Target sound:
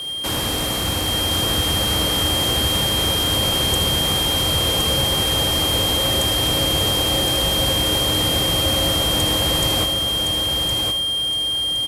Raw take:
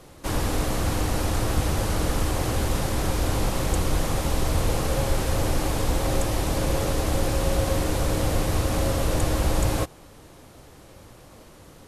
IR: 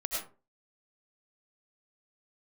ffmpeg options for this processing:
-filter_complex "[0:a]highpass=75,highshelf=f=3k:g=9,asplit=2[a][b];[b]acompressor=threshold=-33dB:ratio=6,volume=0dB[c];[a][c]amix=inputs=2:normalize=0,aeval=exprs='val(0)+0.0562*sin(2*PI*3200*n/s)':c=same,acrossover=split=120|6200[d][e][f];[e]adynamicsmooth=sensitivity=7:basefreq=1.3k[g];[d][g][f]amix=inputs=3:normalize=0,aecho=1:1:1065|2130|3195|4260:0.596|0.173|0.0501|0.0145[h];[1:a]atrim=start_sample=2205,atrim=end_sample=3528[i];[h][i]afir=irnorm=-1:irlink=0"

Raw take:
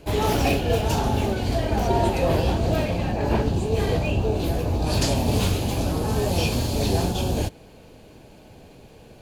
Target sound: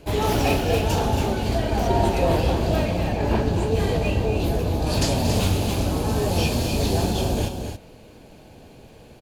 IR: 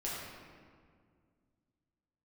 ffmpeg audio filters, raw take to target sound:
-af "aecho=1:1:230.3|277:0.282|0.398"

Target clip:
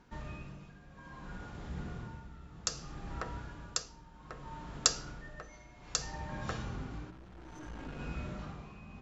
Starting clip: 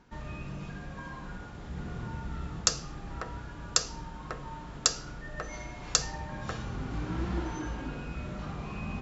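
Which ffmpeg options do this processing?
-filter_complex "[0:a]asettb=1/sr,asplit=3[a][b][c];[a]atrim=end=7.104[d];[b]atrim=start=7.1:end=8,asetpts=PTS-STARTPTS,afade=t=in:d=0.004:c=qsin,afade=t=out:st=0.896:d=0.004:c=qsin,aeval=exprs='(tanh(63.1*val(0)+0.55)-tanh(0.55))/63.1':c=same[e];[c]atrim=start=7.996[f];[d][e]acrossfade=d=0.004:c1=hsin:c2=qsin[g];[g][f]acrossfade=d=0.004:c1=qsin:c2=hsin,tremolo=f=0.62:d=0.77,volume=-1.5dB"

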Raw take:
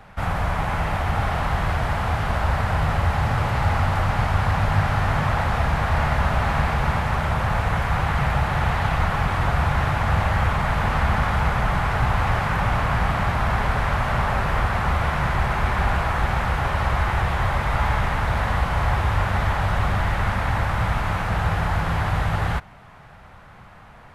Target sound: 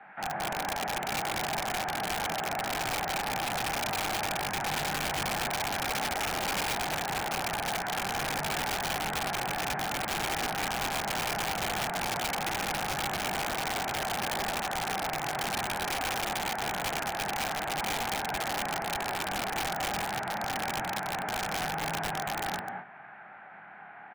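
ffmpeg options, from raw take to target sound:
-filter_complex "[0:a]acrossover=split=440|760[a][b][c];[c]acompressor=threshold=-37dB:ratio=20[d];[a][b][d]amix=inputs=3:normalize=0,flanger=delay=20:depth=5:speed=0.23,highpass=f=200:w=0.5412,highpass=f=200:w=1.3066,equalizer=f=250:t=q:w=4:g=-5,equalizer=f=510:t=q:w=4:g=-8,equalizer=f=780:t=q:w=4:g=9,equalizer=f=1.1k:t=q:w=4:g=-5,equalizer=f=1.6k:t=q:w=4:g=9,equalizer=f=2.3k:t=q:w=4:g=4,lowpass=f=2.6k:w=0.5412,lowpass=f=2.6k:w=1.3066,aecho=1:1:122.4|215.7:0.447|0.631,aeval=exprs='(mod(13.3*val(0)+1,2)-1)/13.3':c=same,volume=-3dB"

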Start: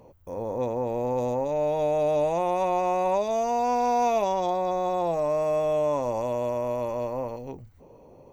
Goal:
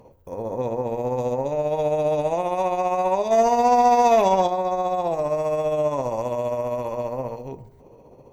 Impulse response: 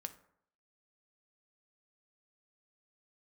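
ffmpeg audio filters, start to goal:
-filter_complex "[0:a]tremolo=f=15:d=0.45,asplit=2[a][b];[1:a]atrim=start_sample=2205,asetrate=33516,aresample=44100[c];[b][c]afir=irnorm=-1:irlink=0,volume=9.5dB[d];[a][d]amix=inputs=2:normalize=0,asplit=3[e][f][g];[e]afade=t=out:st=3.3:d=0.02[h];[f]acontrast=54,afade=t=in:st=3.3:d=0.02,afade=t=out:st=4.46:d=0.02[i];[g]afade=t=in:st=4.46:d=0.02[j];[h][i][j]amix=inputs=3:normalize=0,volume=-6.5dB"

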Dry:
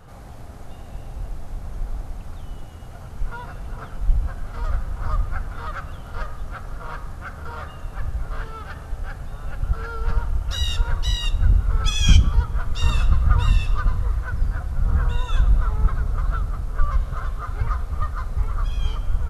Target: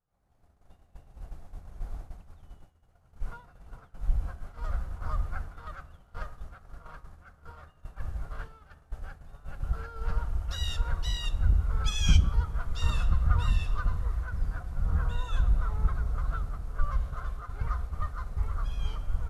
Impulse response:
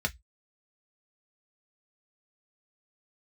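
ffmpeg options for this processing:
-filter_complex "[0:a]agate=range=-33dB:threshold=-23dB:ratio=3:detection=peak,asplit=2[a][b];[1:a]atrim=start_sample=2205,asetrate=48510,aresample=44100[c];[b][c]afir=irnorm=-1:irlink=0,volume=-23dB[d];[a][d]amix=inputs=2:normalize=0,volume=-7.5dB"

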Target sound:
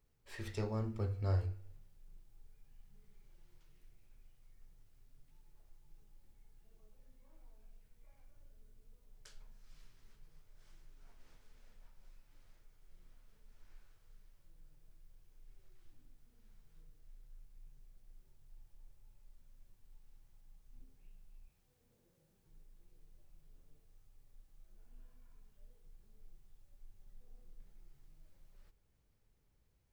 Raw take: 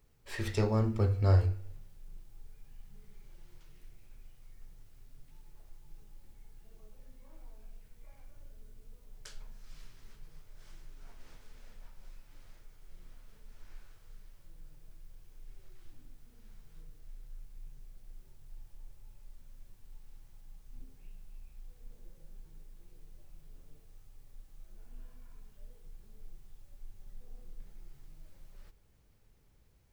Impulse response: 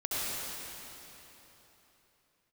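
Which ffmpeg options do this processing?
-filter_complex "[0:a]asettb=1/sr,asplit=3[a][b][c];[a]atrim=end=21.504[d];[b]atrim=start=21.5:end=22.47,asetpts=PTS-STARTPTS,afade=t=in:d=0.004:c=qsin,afade=t=out:st=0.966:d=0.004:c=qsin,highpass=93[e];[c]atrim=start=22.466[f];[d][e]acrossfade=d=0.004:c1=hsin:c2=qsin[g];[g][f]acrossfade=d=0.004:c1=qsin:c2=hsin,volume=-9dB"

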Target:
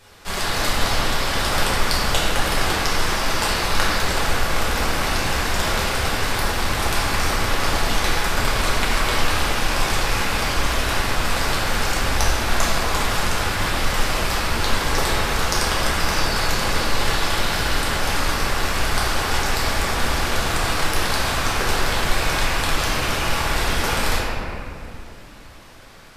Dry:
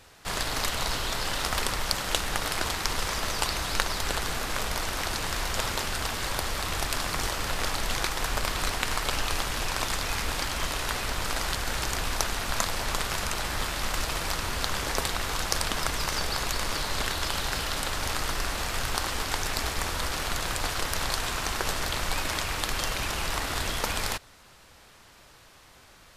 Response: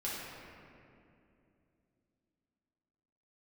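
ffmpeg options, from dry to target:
-filter_complex "[1:a]atrim=start_sample=2205[a];[0:a][a]afir=irnorm=-1:irlink=0,volume=5dB"

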